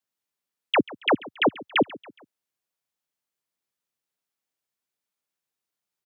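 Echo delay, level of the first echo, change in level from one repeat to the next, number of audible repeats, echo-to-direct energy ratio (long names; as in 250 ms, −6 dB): 139 ms, −20.0 dB, −7.0 dB, 3, −19.0 dB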